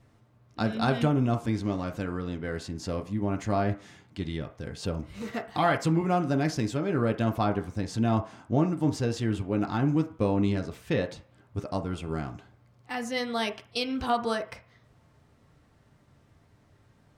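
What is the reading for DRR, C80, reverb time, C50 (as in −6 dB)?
3.0 dB, 17.5 dB, 0.45 s, 13.5 dB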